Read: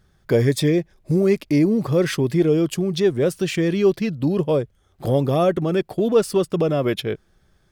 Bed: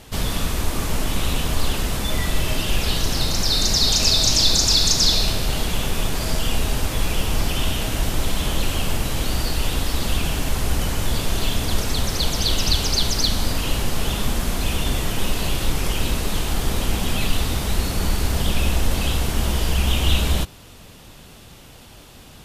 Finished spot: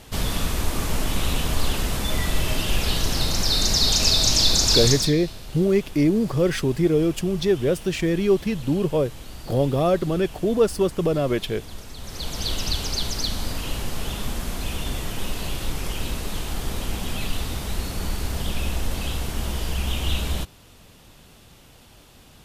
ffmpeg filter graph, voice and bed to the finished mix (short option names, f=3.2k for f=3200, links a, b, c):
-filter_complex "[0:a]adelay=4450,volume=-2dB[a];[1:a]volume=9dB,afade=t=out:st=4.84:d=0.28:silence=0.177828,afade=t=in:st=11.98:d=0.48:silence=0.298538[b];[a][b]amix=inputs=2:normalize=0"